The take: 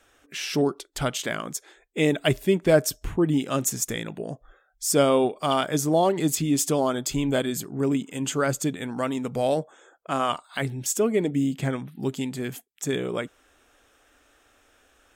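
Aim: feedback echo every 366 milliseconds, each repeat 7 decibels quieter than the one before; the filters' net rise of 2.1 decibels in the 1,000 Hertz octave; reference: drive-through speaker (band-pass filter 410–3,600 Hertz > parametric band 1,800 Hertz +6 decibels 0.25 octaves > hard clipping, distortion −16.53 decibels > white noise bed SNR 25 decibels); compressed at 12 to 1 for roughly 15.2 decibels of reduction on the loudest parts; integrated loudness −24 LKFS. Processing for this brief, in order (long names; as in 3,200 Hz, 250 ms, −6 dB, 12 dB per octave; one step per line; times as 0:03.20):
parametric band 1,000 Hz +3 dB
downward compressor 12 to 1, threshold −28 dBFS
band-pass filter 410–3,600 Hz
parametric band 1,800 Hz +6 dB 0.25 octaves
repeating echo 366 ms, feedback 45%, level −7 dB
hard clipping −26 dBFS
white noise bed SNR 25 dB
level +13 dB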